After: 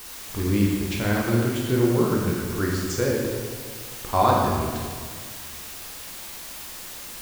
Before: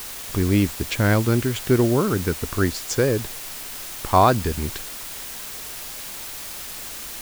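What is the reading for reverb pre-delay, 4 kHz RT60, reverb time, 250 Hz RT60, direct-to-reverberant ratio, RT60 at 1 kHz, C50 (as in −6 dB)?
12 ms, 1.3 s, 1.8 s, 2.0 s, −3.0 dB, 1.7 s, 0.5 dB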